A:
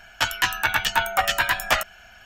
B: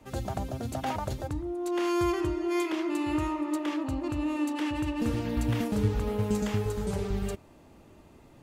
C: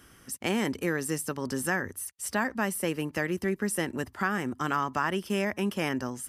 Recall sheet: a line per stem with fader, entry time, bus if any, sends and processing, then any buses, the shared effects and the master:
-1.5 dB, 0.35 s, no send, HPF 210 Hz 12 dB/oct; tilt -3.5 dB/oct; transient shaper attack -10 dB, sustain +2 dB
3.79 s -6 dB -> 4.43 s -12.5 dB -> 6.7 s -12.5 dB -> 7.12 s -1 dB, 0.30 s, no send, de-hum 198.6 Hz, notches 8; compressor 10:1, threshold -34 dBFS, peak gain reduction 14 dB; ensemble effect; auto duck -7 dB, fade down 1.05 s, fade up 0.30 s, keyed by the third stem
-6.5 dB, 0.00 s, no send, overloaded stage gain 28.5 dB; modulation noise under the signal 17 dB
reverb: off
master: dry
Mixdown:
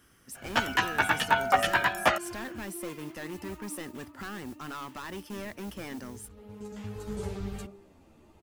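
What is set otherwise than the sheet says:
stem A: missing transient shaper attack -10 dB, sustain +2 dB; stem B: missing compressor 10:1, threshold -34 dBFS, peak gain reduction 14 dB

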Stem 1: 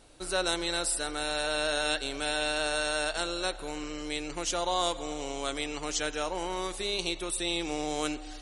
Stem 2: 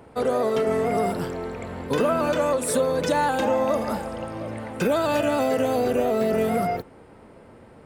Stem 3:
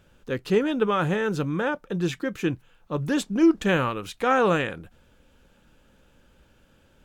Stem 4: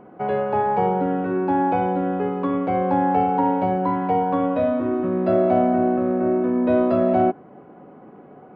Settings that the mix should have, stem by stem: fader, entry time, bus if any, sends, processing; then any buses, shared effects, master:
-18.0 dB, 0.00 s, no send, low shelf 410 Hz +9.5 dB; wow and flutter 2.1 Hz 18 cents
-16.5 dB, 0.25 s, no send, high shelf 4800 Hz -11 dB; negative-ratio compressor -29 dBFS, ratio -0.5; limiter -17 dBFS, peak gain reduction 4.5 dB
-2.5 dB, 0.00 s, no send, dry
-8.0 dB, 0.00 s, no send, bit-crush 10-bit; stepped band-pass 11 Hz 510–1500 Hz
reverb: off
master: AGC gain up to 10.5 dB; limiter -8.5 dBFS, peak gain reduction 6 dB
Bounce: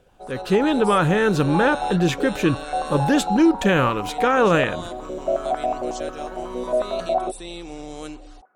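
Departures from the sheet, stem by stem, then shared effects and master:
stem 2 -16.5 dB -> -27.5 dB; stem 4: missing bit-crush 10-bit

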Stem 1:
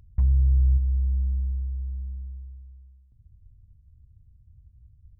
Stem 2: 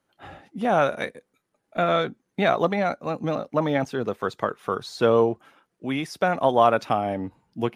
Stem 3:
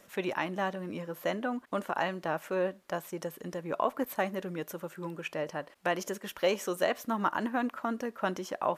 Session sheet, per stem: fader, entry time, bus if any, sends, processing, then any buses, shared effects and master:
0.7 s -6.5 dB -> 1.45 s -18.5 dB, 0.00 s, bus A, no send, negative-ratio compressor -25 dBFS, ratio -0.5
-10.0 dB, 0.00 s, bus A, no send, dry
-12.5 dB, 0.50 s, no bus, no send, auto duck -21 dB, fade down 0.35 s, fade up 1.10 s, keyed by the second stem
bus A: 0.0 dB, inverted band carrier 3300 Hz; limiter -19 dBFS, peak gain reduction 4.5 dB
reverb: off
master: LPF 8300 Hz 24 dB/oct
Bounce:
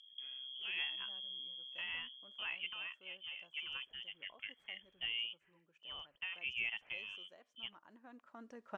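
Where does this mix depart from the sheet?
stem 1 -6.5 dB -> -15.5 dB; stem 2 -10.0 dB -> -22.0 dB

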